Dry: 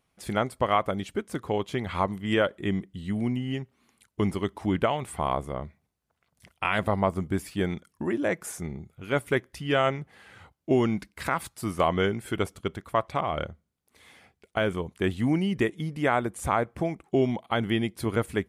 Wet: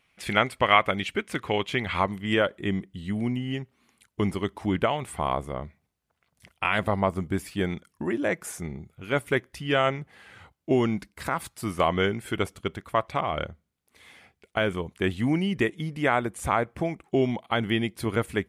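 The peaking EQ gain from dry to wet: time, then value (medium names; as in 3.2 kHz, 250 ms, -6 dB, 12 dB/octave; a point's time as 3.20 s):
peaking EQ 2.4 kHz 1.4 oct
1.57 s +14 dB
2.40 s +2.5 dB
10.81 s +2.5 dB
11.28 s -4 dB
11.54 s +3.5 dB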